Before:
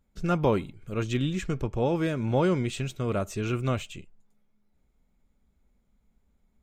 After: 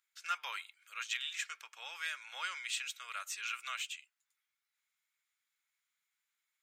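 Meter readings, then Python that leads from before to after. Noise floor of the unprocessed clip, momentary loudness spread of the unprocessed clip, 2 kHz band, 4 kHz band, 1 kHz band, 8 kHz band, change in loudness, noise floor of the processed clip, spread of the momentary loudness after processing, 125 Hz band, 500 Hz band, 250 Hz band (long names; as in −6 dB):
−71 dBFS, 8 LU, 0.0 dB, +1.0 dB, −9.5 dB, +1.0 dB, −11.5 dB, below −85 dBFS, 8 LU, below −40 dB, −35.5 dB, below −40 dB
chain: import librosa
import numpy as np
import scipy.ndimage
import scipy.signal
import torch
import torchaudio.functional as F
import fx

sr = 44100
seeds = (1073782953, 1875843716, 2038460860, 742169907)

y = scipy.signal.sosfilt(scipy.signal.butter(4, 1500.0, 'highpass', fs=sr, output='sos'), x)
y = y * 10.0 ** (1.0 / 20.0)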